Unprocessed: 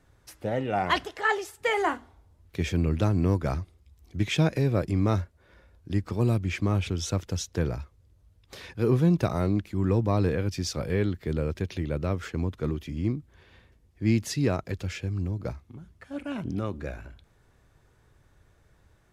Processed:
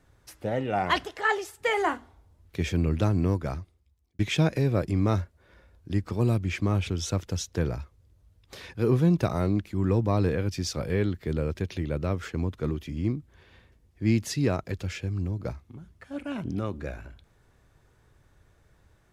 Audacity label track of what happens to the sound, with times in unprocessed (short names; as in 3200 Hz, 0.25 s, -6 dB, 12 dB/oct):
3.150000	4.190000	fade out